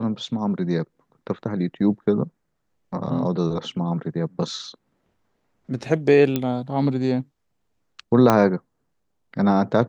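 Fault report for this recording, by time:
0:06.36: click −9 dBFS
0:08.30: click −4 dBFS

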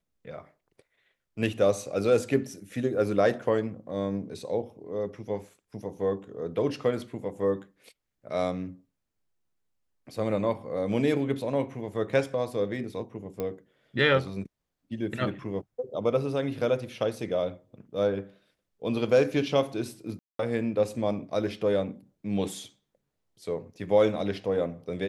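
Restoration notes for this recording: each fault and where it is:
0:13.40: click −20 dBFS
0:20.19–0:20.39: drop-out 203 ms

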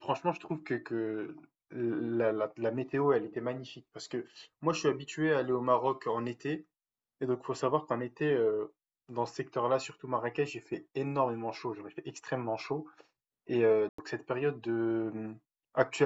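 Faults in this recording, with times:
0:13.89–0:13.98: drop-out 94 ms

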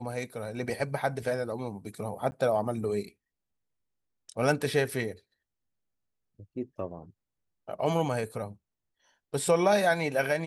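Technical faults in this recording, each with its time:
0:02.31–0:02.32: drop-out 10 ms

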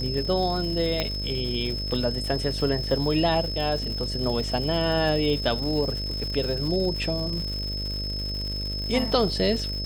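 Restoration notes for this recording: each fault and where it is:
mains buzz 50 Hz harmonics 13 −32 dBFS
surface crackle 230 per second −32 dBFS
whistle 5,200 Hz −31 dBFS
0:01.00: click −11 dBFS

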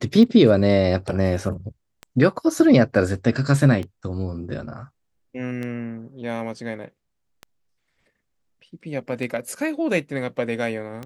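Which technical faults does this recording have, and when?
scratch tick 33 1/3 rpm −19 dBFS

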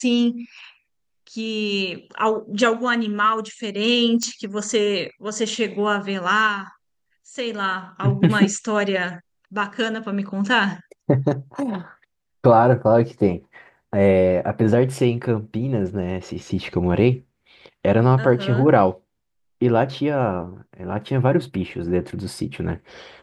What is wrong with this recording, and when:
0:04.23: click −11 dBFS

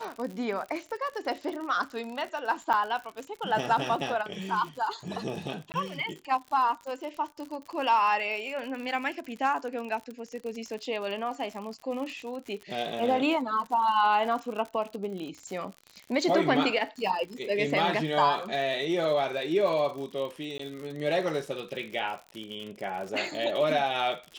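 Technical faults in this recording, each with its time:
surface crackle 70 per second −35 dBFS
0:02.73–0:02.74: drop-out 7.5 ms
0:05.72–0:05.74: drop-out 19 ms
0:20.58–0:20.59: drop-out 14 ms

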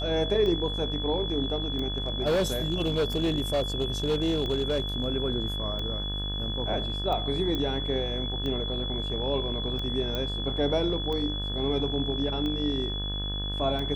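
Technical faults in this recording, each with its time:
mains buzz 50 Hz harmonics 36 −33 dBFS
scratch tick 45 rpm −22 dBFS
whistle 3,400 Hz −33 dBFS
0:01.98–0:05.08: clipping −21 dBFS
0:07.55: click −18 dBFS
0:10.15: click −17 dBFS

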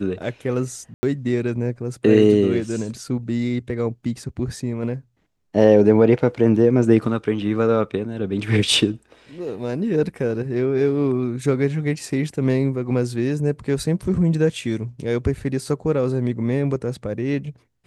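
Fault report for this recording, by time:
0:00.94–0:01.03: drop-out 90 ms

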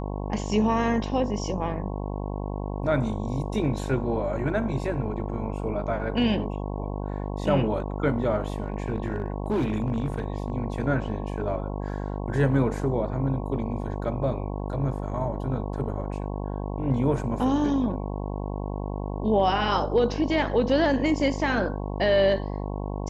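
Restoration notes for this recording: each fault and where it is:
mains buzz 50 Hz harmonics 22 −31 dBFS
0:08.50–0:10.50: clipping −21 dBFS

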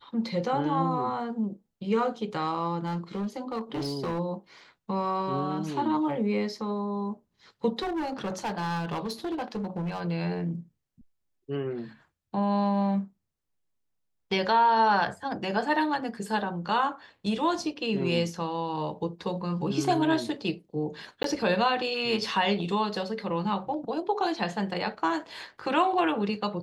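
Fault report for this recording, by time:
0:02.85–0:04.20: clipping −27 dBFS
0:07.82–0:10.01: clipping −27.5 dBFS
0:21.23–0:21.24: drop-out 13 ms

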